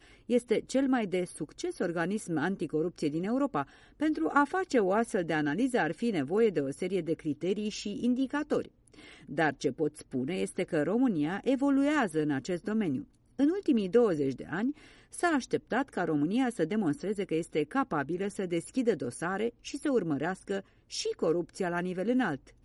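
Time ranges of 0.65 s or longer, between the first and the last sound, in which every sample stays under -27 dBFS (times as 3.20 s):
8.60–9.38 s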